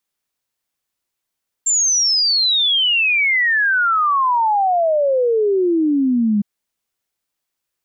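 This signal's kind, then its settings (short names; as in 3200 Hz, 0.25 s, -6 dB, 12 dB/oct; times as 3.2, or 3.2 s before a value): log sweep 7400 Hz -> 200 Hz 4.76 s -13 dBFS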